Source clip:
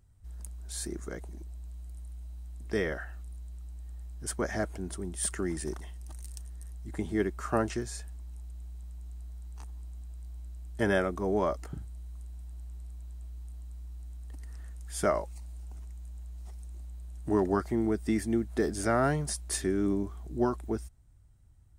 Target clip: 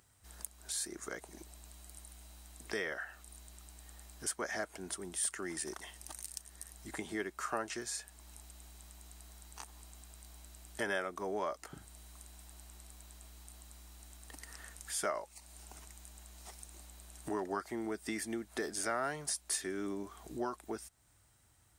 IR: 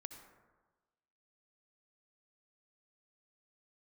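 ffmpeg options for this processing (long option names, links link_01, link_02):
-af "highpass=frequency=1100:poles=1,acompressor=threshold=-56dB:ratio=2,volume=11.5dB"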